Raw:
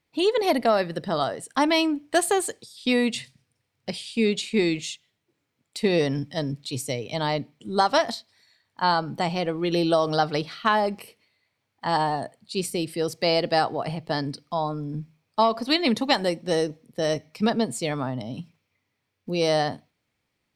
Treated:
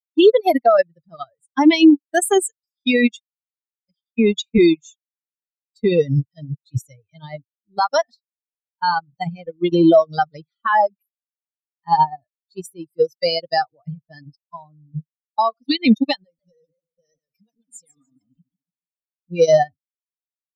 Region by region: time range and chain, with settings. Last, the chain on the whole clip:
3.19–4.58 s: companding laws mixed up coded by A + distance through air 60 m + three bands expanded up and down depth 100%
16.24–19.30 s: comb 4.2 ms, depth 54% + compression 10:1, threshold -29 dBFS + modulated delay 145 ms, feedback 56%, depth 155 cents, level -6 dB
whole clip: expander on every frequency bin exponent 3; loudness maximiser +24 dB; upward expansion 2.5:1, over -21 dBFS; trim -2 dB

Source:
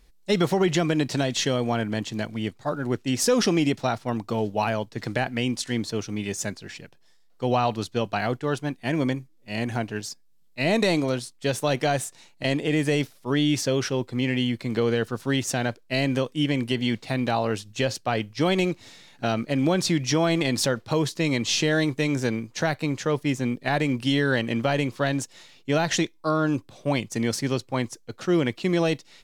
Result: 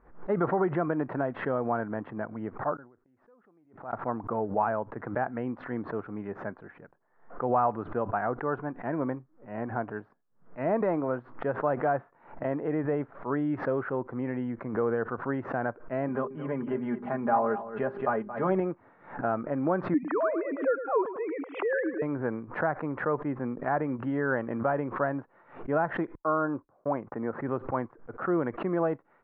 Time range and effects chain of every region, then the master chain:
2.75–3.93 s: inverted gate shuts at -29 dBFS, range -36 dB + decay stretcher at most 98 dB/s
16.08–18.60 s: hum notches 50/100/150/200/250/300/350/400 Hz + comb 4.9 ms, depth 67% + delay 224 ms -13 dB
19.94–22.02 s: formants replaced by sine waves + bass shelf 200 Hz -7 dB + feedback delay 107 ms, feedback 33%, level -11.5 dB
26.15–27.41 s: gate -41 dBFS, range -51 dB + low-pass 1.9 kHz + bass shelf 120 Hz -8 dB
whole clip: steep low-pass 1.4 kHz 36 dB/octave; tilt EQ +3.5 dB/octave; swell ahead of each attack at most 130 dB/s

